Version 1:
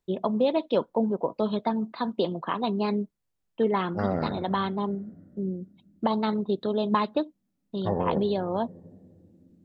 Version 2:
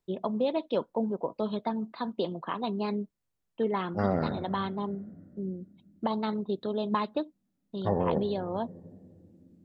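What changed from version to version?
first voice −4.5 dB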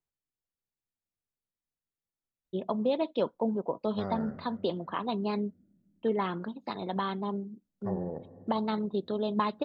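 first voice: entry +2.45 s
second voice −9.5 dB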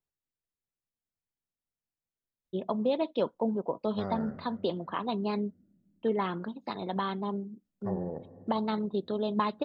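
nothing changed

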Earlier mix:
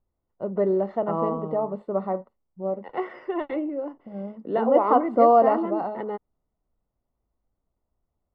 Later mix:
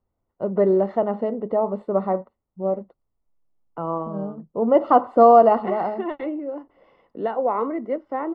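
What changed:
first voice +4.5 dB
second voice: entry +2.70 s

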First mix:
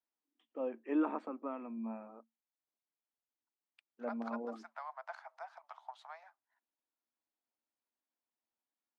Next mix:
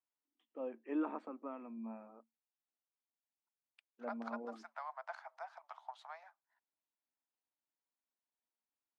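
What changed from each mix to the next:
first voice −4.5 dB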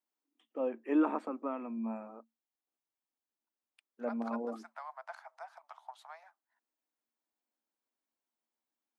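first voice +8.5 dB
master: remove low-pass filter 5,700 Hz 12 dB per octave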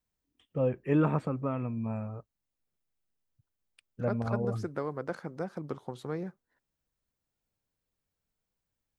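second voice: remove Chebyshev high-pass with heavy ripple 630 Hz, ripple 3 dB
master: remove Chebyshev high-pass with heavy ripple 220 Hz, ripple 6 dB

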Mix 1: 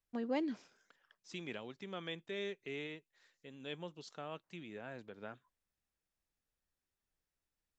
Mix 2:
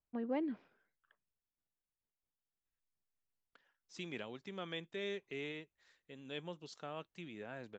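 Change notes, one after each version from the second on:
first voice: add high-frequency loss of the air 450 metres
second voice: entry +2.65 s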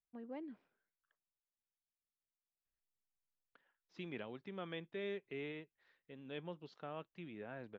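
first voice −10.5 dB
second voice: add high-frequency loss of the air 290 metres

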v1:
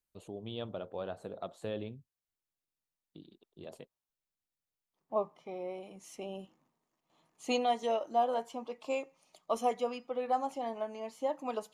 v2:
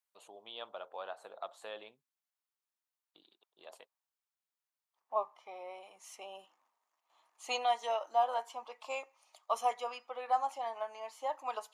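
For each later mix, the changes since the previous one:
master: add high-pass with resonance 910 Hz, resonance Q 1.5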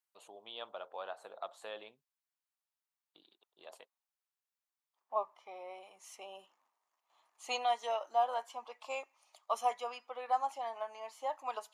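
reverb: off

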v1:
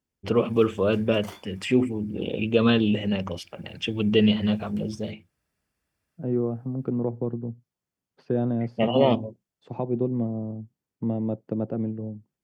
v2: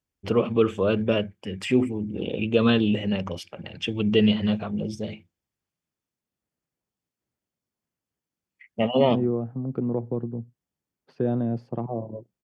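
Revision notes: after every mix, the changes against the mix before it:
second voice: entry +2.90 s
background: muted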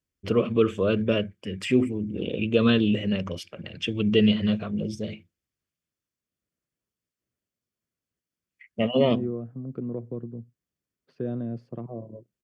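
second voice −5.5 dB
master: add parametric band 840 Hz −13 dB 0.36 octaves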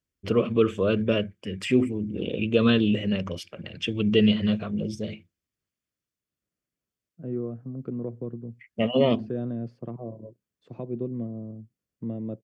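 second voice: entry −1.90 s

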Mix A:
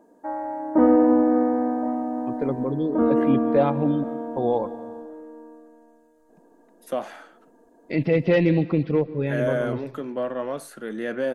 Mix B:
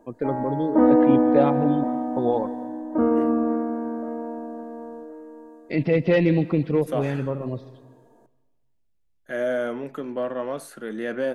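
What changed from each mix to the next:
first voice: entry −2.20 s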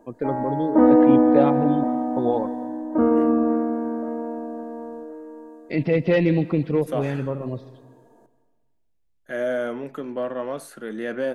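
background: send +9.0 dB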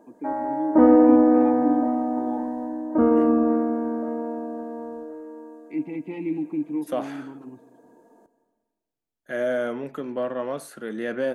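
first voice: add formant filter u

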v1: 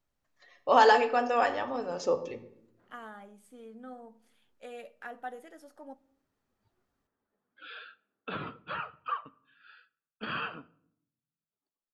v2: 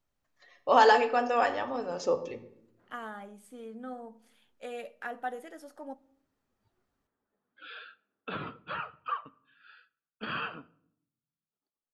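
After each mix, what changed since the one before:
second voice +4.5 dB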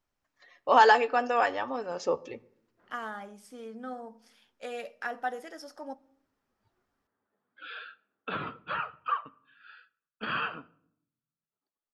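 first voice: send −11.5 dB
second voice: add parametric band 5,300 Hz +15 dB 0.4 octaves
master: add parametric band 1,400 Hz +4 dB 2.4 octaves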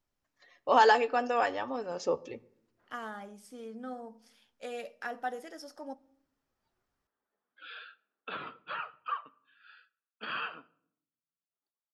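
background: add high-pass filter 680 Hz 6 dB per octave
master: add parametric band 1,400 Hz −4 dB 2.4 octaves

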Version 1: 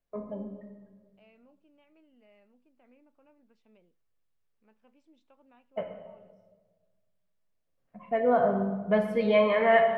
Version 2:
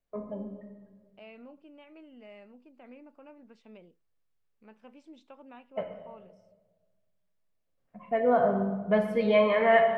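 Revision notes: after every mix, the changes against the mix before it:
second voice +11.5 dB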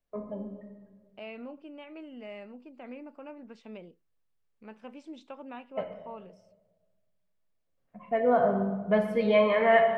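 second voice +7.0 dB

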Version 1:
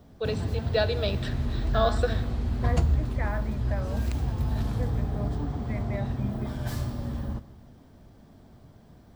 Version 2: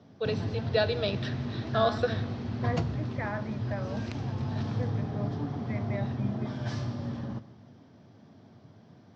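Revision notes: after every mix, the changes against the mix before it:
master: add Chebyshev band-pass filter 100–5,800 Hz, order 4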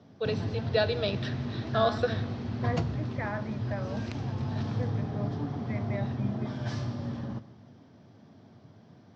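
nothing changed

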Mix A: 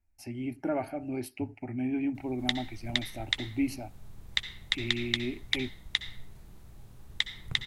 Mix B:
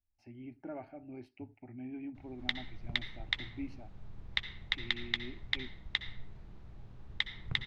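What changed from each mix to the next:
speech −12.0 dB
master: add high-frequency loss of the air 210 metres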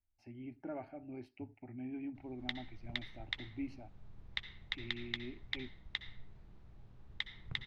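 background −6.5 dB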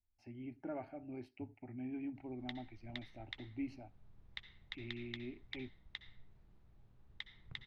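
background −8.0 dB

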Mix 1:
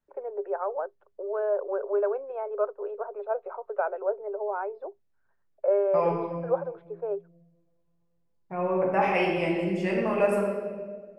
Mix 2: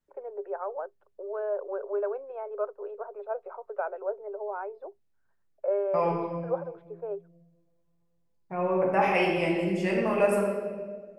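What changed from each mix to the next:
first voice −4.0 dB
master: add high-shelf EQ 5,800 Hz +7 dB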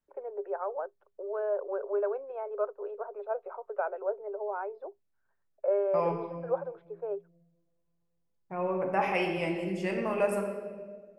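second voice: send −6.5 dB

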